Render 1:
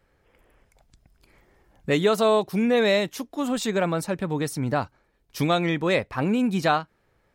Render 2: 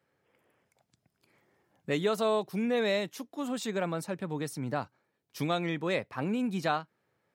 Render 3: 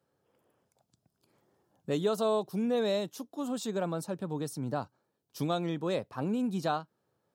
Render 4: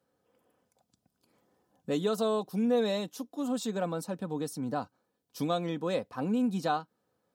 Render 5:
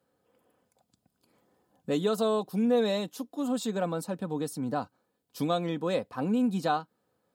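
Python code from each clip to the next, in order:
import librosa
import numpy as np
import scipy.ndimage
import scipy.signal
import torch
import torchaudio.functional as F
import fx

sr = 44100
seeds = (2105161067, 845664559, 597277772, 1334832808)

y1 = scipy.signal.sosfilt(scipy.signal.butter(4, 110.0, 'highpass', fs=sr, output='sos'), x)
y1 = y1 * 10.0 ** (-8.0 / 20.0)
y2 = fx.peak_eq(y1, sr, hz=2100.0, db=-13.5, octaves=0.75)
y3 = y2 + 0.42 * np.pad(y2, (int(4.0 * sr / 1000.0), 0))[:len(y2)]
y4 = fx.peak_eq(y3, sr, hz=5800.0, db=-5.5, octaves=0.21)
y4 = y4 * 10.0 ** (2.0 / 20.0)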